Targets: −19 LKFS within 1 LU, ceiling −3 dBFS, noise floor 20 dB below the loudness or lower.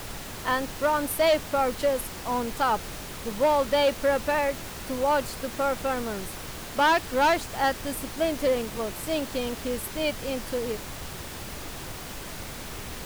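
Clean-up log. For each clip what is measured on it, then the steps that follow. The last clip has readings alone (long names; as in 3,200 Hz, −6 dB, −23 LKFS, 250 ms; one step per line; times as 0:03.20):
share of clipped samples 0.9%; peaks flattened at −16.5 dBFS; background noise floor −39 dBFS; target noise floor −48 dBFS; integrated loudness −27.5 LKFS; sample peak −16.5 dBFS; target loudness −19.0 LKFS
→ clipped peaks rebuilt −16.5 dBFS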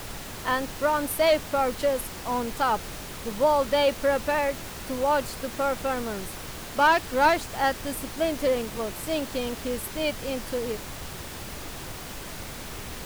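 share of clipped samples 0.0%; background noise floor −39 dBFS; target noise floor −47 dBFS
→ noise reduction from a noise print 8 dB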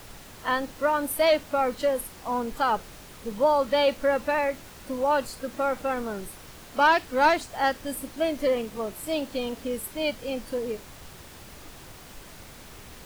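background noise floor −46 dBFS; target noise floor −47 dBFS
→ noise reduction from a noise print 6 dB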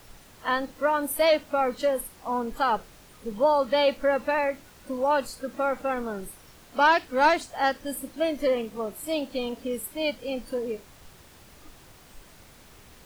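background noise floor −52 dBFS; integrated loudness −26.5 LKFS; sample peak −8.5 dBFS; target loudness −19.0 LKFS
→ level +7.5 dB
brickwall limiter −3 dBFS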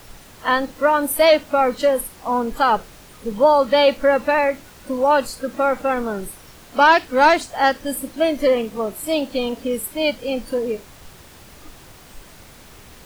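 integrated loudness −19.0 LKFS; sample peak −3.0 dBFS; background noise floor −45 dBFS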